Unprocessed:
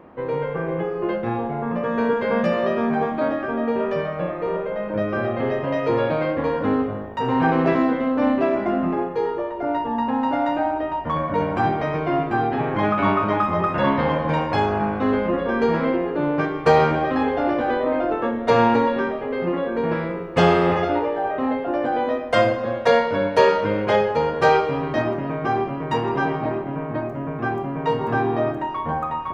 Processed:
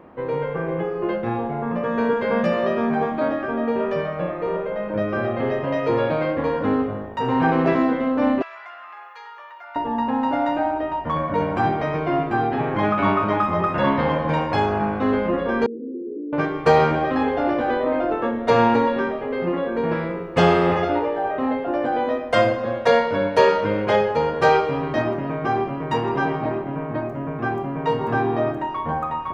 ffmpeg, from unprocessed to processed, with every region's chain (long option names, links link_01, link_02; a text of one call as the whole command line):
ffmpeg -i in.wav -filter_complex "[0:a]asettb=1/sr,asplit=3[link_01][link_02][link_03];[link_01]atrim=end=8.424[link_04];[link_02]atrim=start=8.42:end=9.76,asetpts=PTS-STARTPTS,afade=type=in:duration=0.004:curve=qsin,afade=type=out:start_time=1.336:duration=0.004:curve=qsin,highpass=frequency=1100:width=0.5412,highpass=frequency=1100:width=1.3066,acompressor=threshold=-37dB:ratio=2.5:attack=3.2:release=140:knee=1:detection=peak[link_05];[link_03]atrim=start=9.756[link_06];[link_04][link_05]acrossfade=duration=0.004:curve1=hsin:curve2=qsin[link_07];[link_07][link_06]acrossfade=duration=0.004:curve1=qsin:curve2=hsin,asettb=1/sr,asplit=3[link_08][link_09][link_10];[link_08]atrim=end=15.664[link_11];[link_09]atrim=start=15.66:end=16.33,asetpts=PTS-STARTPTS,afade=type=in:duration=0.004:curve=qsin,afade=type=out:start_time=0.666:duration=0.004:curve=qsin,asoftclip=type=hard:threshold=-26.5dB,asuperpass=centerf=310:order=12:qfactor=1.2[link_12];[link_10]atrim=start=16.326[link_13];[link_11][link_12]acrossfade=duration=0.004:curve1=hsin:curve2=qsin[link_14];[link_14][link_13]acrossfade=duration=0.004:curve1=qsin:curve2=hsin" out.wav